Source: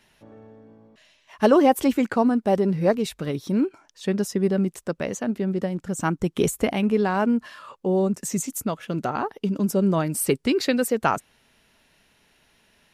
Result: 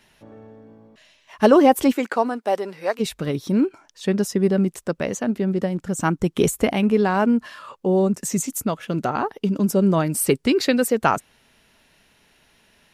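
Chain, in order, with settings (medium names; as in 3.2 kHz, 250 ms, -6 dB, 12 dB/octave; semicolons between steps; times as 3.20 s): 1.91–2.99 s: high-pass 330 Hz -> 830 Hz 12 dB/octave; trim +3 dB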